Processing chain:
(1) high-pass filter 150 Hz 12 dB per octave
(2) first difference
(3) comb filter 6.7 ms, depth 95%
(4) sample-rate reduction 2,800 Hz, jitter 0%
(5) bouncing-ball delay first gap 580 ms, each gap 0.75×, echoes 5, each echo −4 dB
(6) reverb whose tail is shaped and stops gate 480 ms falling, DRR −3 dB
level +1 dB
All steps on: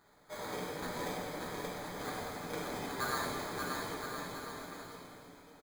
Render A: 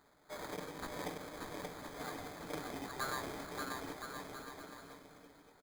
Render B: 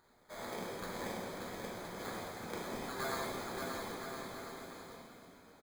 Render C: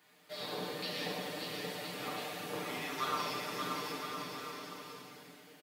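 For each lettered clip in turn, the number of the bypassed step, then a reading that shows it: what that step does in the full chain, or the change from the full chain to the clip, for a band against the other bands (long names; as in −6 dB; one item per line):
6, echo-to-direct ratio 6.0 dB to −2.0 dB
3, change in integrated loudness −2.5 LU
4, 4 kHz band +6.0 dB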